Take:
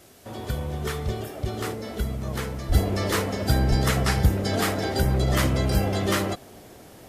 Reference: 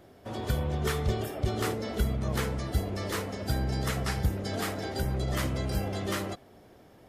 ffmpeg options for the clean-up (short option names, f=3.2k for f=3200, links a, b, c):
-filter_complex "[0:a]asplit=3[a][b][c];[a]afade=t=out:st=2.68:d=0.02[d];[b]highpass=f=140:w=0.5412,highpass=f=140:w=1.3066,afade=t=in:st=2.68:d=0.02,afade=t=out:st=2.8:d=0.02[e];[c]afade=t=in:st=2.8:d=0.02[f];[d][e][f]amix=inputs=3:normalize=0,asplit=3[g][h][i];[g]afade=t=out:st=3.69:d=0.02[j];[h]highpass=f=140:w=0.5412,highpass=f=140:w=1.3066,afade=t=in:st=3.69:d=0.02,afade=t=out:st=3.81:d=0.02[k];[i]afade=t=in:st=3.81:d=0.02[l];[j][k][l]amix=inputs=3:normalize=0,agate=range=-21dB:threshold=-38dB,asetnsamples=n=441:p=0,asendcmd='2.72 volume volume -8dB',volume=0dB"